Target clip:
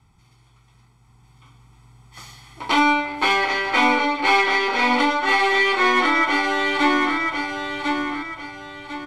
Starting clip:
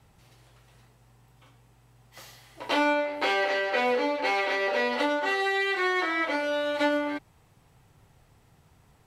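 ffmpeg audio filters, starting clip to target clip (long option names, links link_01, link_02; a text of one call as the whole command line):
ffmpeg -i in.wav -af "dynaudnorm=framelen=430:gausssize=7:maxgain=8dB,lowpass=9600,aecho=1:1:0.9:0.76,aeval=exprs='0.631*(cos(1*acos(clip(val(0)/0.631,-1,1)))-cos(1*PI/2))+0.0501*(cos(2*acos(clip(val(0)/0.631,-1,1)))-cos(2*PI/2))+0.0447*(cos(4*acos(clip(val(0)/0.631,-1,1)))-cos(4*PI/2))+0.0316*(cos(6*acos(clip(val(0)/0.631,-1,1)))-cos(6*PI/2))+0.00794*(cos(7*acos(clip(val(0)/0.631,-1,1)))-cos(7*PI/2))':channel_layout=same,aecho=1:1:1048|2096|3144|4192:0.631|0.221|0.0773|0.0271,volume=-1.5dB" out.wav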